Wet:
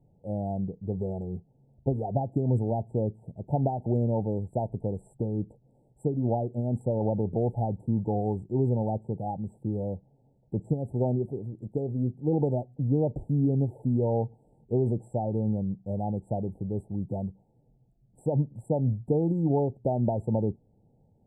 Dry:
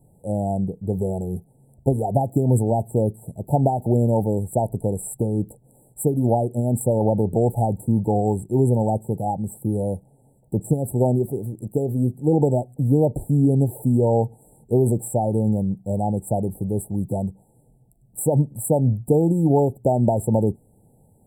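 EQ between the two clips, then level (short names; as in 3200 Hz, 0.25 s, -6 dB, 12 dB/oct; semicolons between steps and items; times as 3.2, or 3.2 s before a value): tape spacing loss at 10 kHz 30 dB; -6.5 dB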